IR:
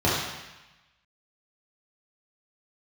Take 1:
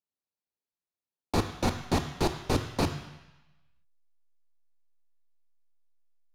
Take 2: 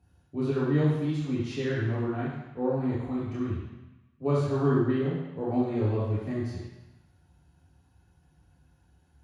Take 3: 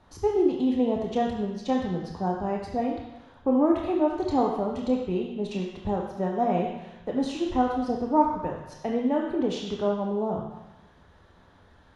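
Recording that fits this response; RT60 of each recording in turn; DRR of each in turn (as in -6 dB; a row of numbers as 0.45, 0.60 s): 2; 1.0, 1.0, 1.0 s; 7.5, -8.0, -0.5 dB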